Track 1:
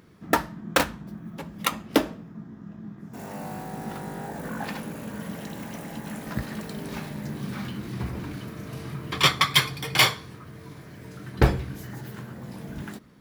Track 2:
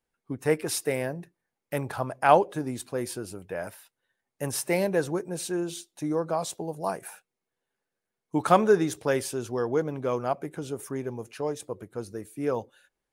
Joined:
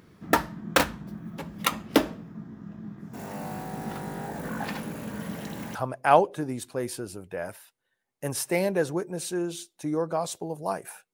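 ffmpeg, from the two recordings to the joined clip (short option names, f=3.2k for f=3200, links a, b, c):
-filter_complex "[0:a]apad=whole_dur=11.13,atrim=end=11.13,atrim=end=5.752[a];[1:a]atrim=start=1.928:end=7.31[b];[a][b]acrossfade=d=0.004:c1=hsin:c2=hsin"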